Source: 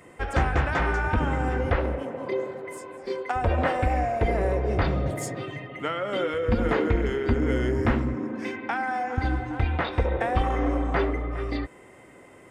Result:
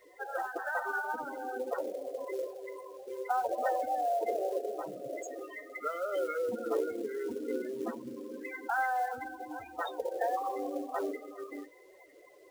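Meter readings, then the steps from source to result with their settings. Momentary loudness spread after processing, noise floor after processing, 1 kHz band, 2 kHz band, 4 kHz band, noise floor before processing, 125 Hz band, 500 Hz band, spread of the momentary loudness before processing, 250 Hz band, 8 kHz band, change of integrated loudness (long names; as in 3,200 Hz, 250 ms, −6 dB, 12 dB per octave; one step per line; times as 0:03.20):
12 LU, −58 dBFS, −5.0 dB, −8.0 dB, −15.0 dB, −50 dBFS, below −35 dB, −6.5 dB, 8 LU, −13.5 dB, −7.5 dB, −9.0 dB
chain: spectral envelope exaggerated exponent 1.5
high-pass filter 510 Hz 12 dB per octave
spectral peaks only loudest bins 16
two-band tremolo in antiphase 3.7 Hz, depth 50%, crossover 670 Hz
log-companded quantiser 6 bits
flanger 0.82 Hz, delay 6.3 ms, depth 2.8 ms, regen −61%
level +4.5 dB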